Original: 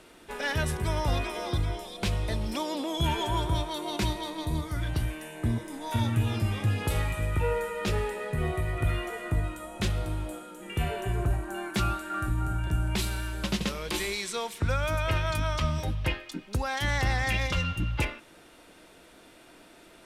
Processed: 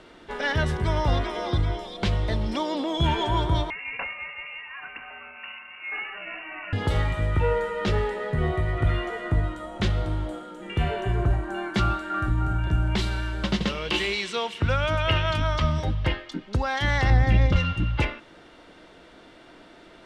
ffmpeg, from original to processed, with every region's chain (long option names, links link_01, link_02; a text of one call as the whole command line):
ffmpeg -i in.wav -filter_complex "[0:a]asettb=1/sr,asplit=3[link_01][link_02][link_03];[link_01]atrim=end=3.704[link_04];[link_02]atrim=start=3.7:end=6.73,asetpts=PTS-STARTPTS,afade=type=in:duration=0.004:curve=qsin,afade=type=out:start_time=3.026:duration=0.004:curve=qsin,highpass=frequency=390:width=0.5412,highpass=frequency=390:width=1.3066,aeval=exprs='sgn(val(0))*max(abs(val(0))-0.00126,0)':channel_layout=same,lowpass=frequency=2600:width_type=q:width=0.5098,lowpass=frequency=2600:width_type=q:width=0.6013,lowpass=frequency=2600:width_type=q:width=0.9,lowpass=frequency=2600:width_type=q:width=2.563,afreqshift=-3100[link_05];[link_03]atrim=start=6.726[link_06];[link_04][link_05]acrossfade=duration=0.004:curve1=hsin:curve2=qsin[link_07];[link_07][link_06]acrossfade=duration=0.004:curve1=qsin:curve2=hsin,asettb=1/sr,asplit=3[link_08][link_09][link_10];[link_08]atrim=end=13.694[link_11];[link_09]atrim=start=13.69:end=15.42,asetpts=PTS-STARTPTS,afade=type=in:duration=0.004:curve=qsin,afade=type=out:start_time=1.726:duration=0.004:curve=qsin,highpass=50,equalizer=frequency=2800:width=4.7:gain=12[link_12];[link_10]atrim=start=15.416[link_13];[link_11][link_12]acrossfade=duration=0.004:curve1=hsin:curve2=qsin[link_14];[link_14][link_13]acrossfade=duration=0.004:curve1=qsin:curve2=hsin,asettb=1/sr,asplit=3[link_15][link_16][link_17];[link_15]atrim=end=17.104[link_18];[link_16]atrim=start=17.1:end=17.56,asetpts=PTS-STARTPTS,afade=type=in:duration=0.004:curve=qsin,afade=type=out:start_time=0.456:duration=0.004:curve=qsin,tiltshelf=frequency=660:gain=8,bandreject=frequency=980:width=12[link_19];[link_17]atrim=start=17.556[link_20];[link_18][link_19]acrossfade=duration=0.004:curve1=hsin:curve2=qsin[link_21];[link_21][link_20]acrossfade=duration=0.004:curve1=qsin:curve2=hsin,lowpass=4300,bandreject=frequency=2500:width=12,volume=4.5dB" out.wav